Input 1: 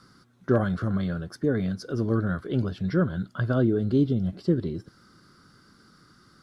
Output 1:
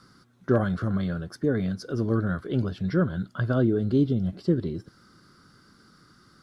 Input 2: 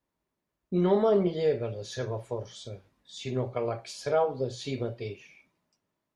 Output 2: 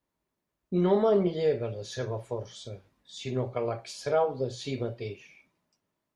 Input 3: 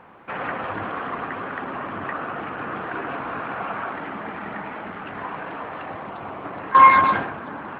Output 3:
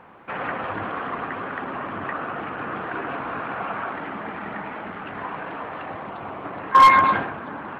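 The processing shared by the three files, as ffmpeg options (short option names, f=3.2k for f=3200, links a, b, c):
-af "asoftclip=type=hard:threshold=-6.5dB"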